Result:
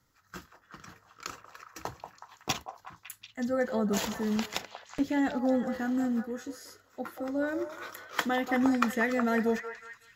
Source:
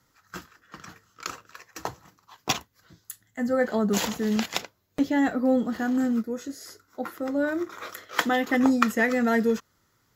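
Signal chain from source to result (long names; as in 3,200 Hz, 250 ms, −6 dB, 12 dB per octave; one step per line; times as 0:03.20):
low-shelf EQ 81 Hz +7.5 dB
echo through a band-pass that steps 185 ms, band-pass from 750 Hz, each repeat 0.7 octaves, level −5 dB
level −5.5 dB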